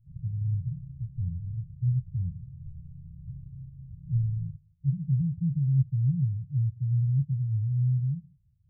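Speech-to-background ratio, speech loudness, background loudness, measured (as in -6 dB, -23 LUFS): 15.5 dB, -29.0 LUFS, -44.5 LUFS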